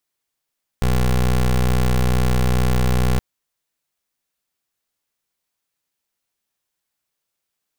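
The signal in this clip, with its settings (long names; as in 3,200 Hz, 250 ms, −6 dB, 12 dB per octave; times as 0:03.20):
pulse wave 62.3 Hz, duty 20% −16.5 dBFS 2.37 s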